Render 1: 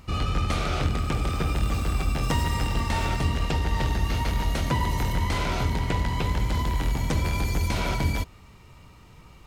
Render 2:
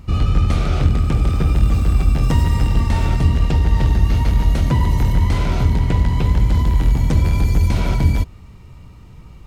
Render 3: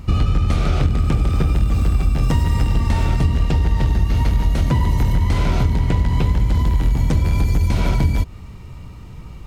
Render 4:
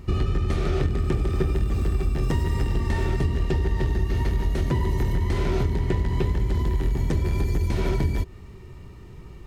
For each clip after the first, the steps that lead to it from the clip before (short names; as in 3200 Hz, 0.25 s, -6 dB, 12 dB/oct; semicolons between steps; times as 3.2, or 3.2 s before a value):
low shelf 330 Hz +11.5 dB
compressor, threshold -17 dBFS, peak gain reduction 9 dB; gain +4.5 dB
small resonant body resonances 380/1800 Hz, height 14 dB, ringing for 65 ms; gain -7 dB